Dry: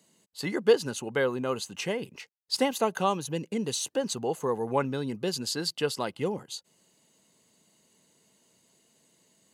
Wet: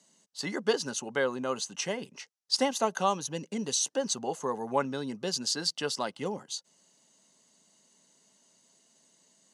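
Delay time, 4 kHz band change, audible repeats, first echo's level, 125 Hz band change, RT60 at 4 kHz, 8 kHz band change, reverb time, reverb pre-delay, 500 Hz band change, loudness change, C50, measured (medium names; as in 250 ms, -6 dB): no echo, +1.5 dB, no echo, no echo, -6.0 dB, no reverb, +3.5 dB, no reverb, no reverb, -4.0 dB, -1.5 dB, no reverb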